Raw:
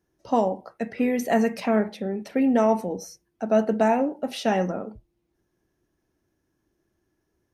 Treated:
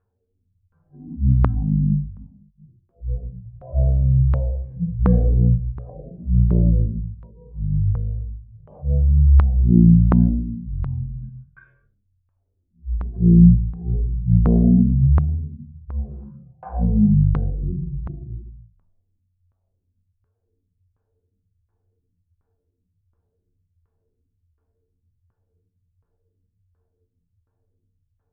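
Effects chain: harmonic-percussive separation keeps harmonic; LFO low-pass saw down 5.2 Hz 290–4400 Hz; wide varispeed 0.266×; trim +4.5 dB

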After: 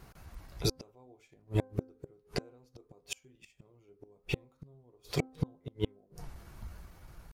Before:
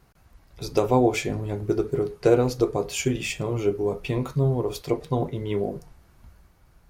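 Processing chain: tempo 0.94×; in parallel at -2.5 dB: peak limiter -16 dBFS, peak gain reduction 9.5 dB; on the sum: inverted gate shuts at -16 dBFS, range -41 dB; de-hum 260 Hz, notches 6

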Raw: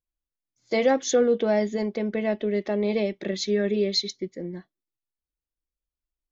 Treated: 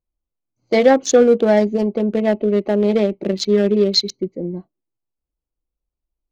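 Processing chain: local Wiener filter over 25 samples; trim +9 dB

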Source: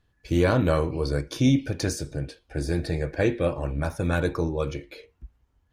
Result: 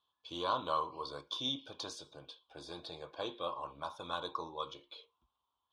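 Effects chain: two resonant band-passes 1.9 kHz, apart 1.7 oct; dynamic bell 2.3 kHz, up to -4 dB, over -58 dBFS, Q 2.4; trim +4 dB

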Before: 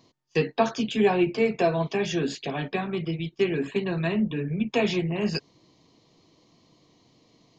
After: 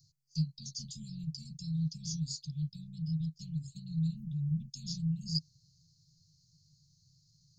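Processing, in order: Chebyshev band-stop 160–4500 Hz, order 5

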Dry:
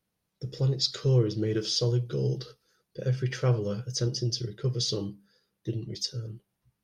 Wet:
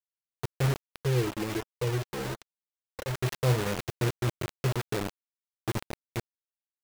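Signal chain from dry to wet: CVSD coder 16 kbps; bit crusher 5-bit; 1.04–3.15 s: flange 1.3 Hz, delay 1.8 ms, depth 2.1 ms, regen -27%

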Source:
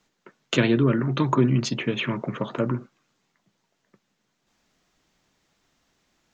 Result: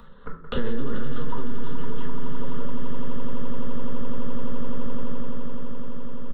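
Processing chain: high-pass 80 Hz 12 dB/octave; in parallel at -7 dB: hard clipper -19.5 dBFS, distortion -9 dB; on the sum: doubling 33 ms -11.5 dB; LPC vocoder at 8 kHz pitch kept; static phaser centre 470 Hz, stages 8; gate -47 dBFS, range -30 dB; on a send: echo with a slow build-up 85 ms, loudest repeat 8, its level -9 dB; on the sum: upward compressor, threshold -33 dBFS; simulated room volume 380 m³, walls furnished, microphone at 1.8 m; peak limiter -11 dBFS, peak gain reduction 18.5 dB; three bands compressed up and down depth 40%

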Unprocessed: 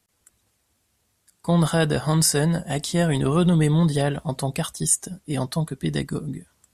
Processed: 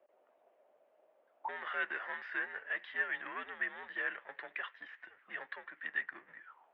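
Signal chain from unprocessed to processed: power-law waveshaper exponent 0.7; auto-wah 660–1900 Hz, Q 6.8, up, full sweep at -24 dBFS; mistuned SSB -98 Hz 400–3200 Hz

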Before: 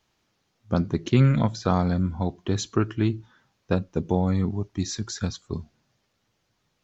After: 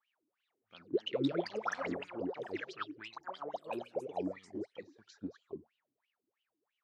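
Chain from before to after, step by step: 3.13–3.81 s: ring modulator 33 Hz; wah-wah 3 Hz 280–3000 Hz, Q 16; ever faster or slower copies 395 ms, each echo +4 st, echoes 3; trim +3.5 dB

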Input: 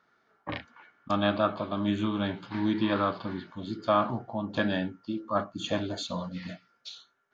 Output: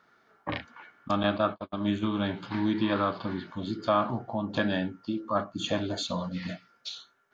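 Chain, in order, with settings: 1.23–2.08 s: gate -29 dBFS, range -47 dB; in parallel at +2.5 dB: compression, threshold -36 dBFS, peak gain reduction 16 dB; on the sum: trim -2.5 dB

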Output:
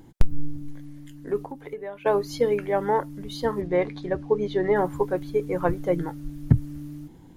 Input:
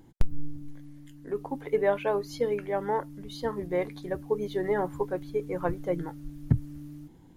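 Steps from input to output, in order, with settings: 1.40–2.06 s: compression 5:1, threshold -40 dBFS, peak gain reduction 18.5 dB; 3.61–4.76 s: low-pass 5 kHz 12 dB/octave; trim +5.5 dB

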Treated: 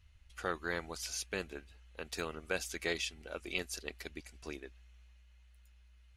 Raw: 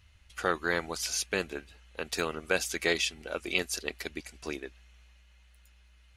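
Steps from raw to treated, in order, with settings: bass shelf 69 Hz +11.5 dB; trim -8 dB

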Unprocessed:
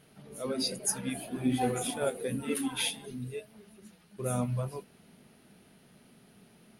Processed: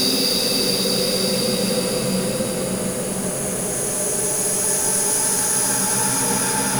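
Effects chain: fuzz box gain 42 dB, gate -45 dBFS; Paulstretch 23×, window 0.25 s, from 0.66 s; trim -3.5 dB

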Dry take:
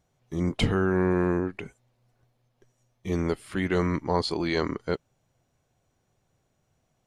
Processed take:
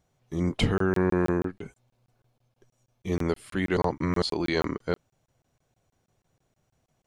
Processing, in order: 1.52–3.07 s: band-stop 1.9 kHz, Q 9.5; 3.77–4.22 s: reverse; crackling interface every 0.16 s, samples 1024, zero, from 0.78 s

